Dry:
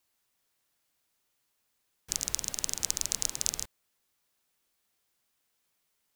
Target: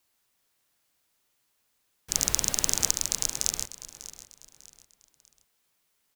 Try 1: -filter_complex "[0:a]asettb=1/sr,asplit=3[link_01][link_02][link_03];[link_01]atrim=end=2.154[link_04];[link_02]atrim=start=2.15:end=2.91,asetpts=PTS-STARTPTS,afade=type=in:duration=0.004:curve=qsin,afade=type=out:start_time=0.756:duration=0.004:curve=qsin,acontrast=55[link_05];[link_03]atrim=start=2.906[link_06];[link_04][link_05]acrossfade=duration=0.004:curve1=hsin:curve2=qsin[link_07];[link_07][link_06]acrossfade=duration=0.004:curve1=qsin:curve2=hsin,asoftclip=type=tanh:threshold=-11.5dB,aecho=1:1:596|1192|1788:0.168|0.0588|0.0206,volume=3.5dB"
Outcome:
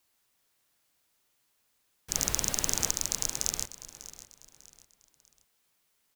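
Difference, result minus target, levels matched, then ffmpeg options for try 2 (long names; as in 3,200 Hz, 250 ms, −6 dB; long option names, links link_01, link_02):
soft clipping: distortion +11 dB
-filter_complex "[0:a]asettb=1/sr,asplit=3[link_01][link_02][link_03];[link_01]atrim=end=2.154[link_04];[link_02]atrim=start=2.15:end=2.91,asetpts=PTS-STARTPTS,afade=type=in:duration=0.004:curve=qsin,afade=type=out:start_time=0.756:duration=0.004:curve=qsin,acontrast=55[link_05];[link_03]atrim=start=2.906[link_06];[link_04][link_05]acrossfade=duration=0.004:curve1=hsin:curve2=qsin[link_07];[link_07][link_06]acrossfade=duration=0.004:curve1=qsin:curve2=hsin,asoftclip=type=tanh:threshold=-3dB,aecho=1:1:596|1192|1788:0.168|0.0588|0.0206,volume=3.5dB"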